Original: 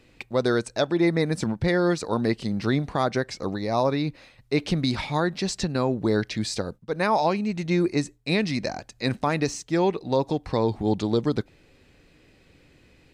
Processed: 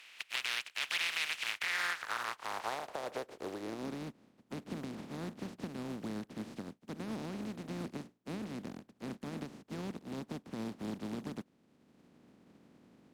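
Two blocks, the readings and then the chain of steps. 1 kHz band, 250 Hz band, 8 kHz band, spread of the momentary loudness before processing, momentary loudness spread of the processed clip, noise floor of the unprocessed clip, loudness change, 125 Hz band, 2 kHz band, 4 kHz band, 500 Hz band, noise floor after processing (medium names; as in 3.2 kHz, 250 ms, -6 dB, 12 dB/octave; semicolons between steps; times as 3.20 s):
-15.0 dB, -16.5 dB, -10.5 dB, 7 LU, 12 LU, -58 dBFS, -14.0 dB, -19.5 dB, -6.5 dB, -7.5 dB, -20.5 dB, -70 dBFS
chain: spectral contrast reduction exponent 0.11; peak limiter -12.5 dBFS, peak gain reduction 8.5 dB; band-pass sweep 2.6 kHz -> 220 Hz, 1.45–4.06 s; three bands compressed up and down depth 40%; trim +2.5 dB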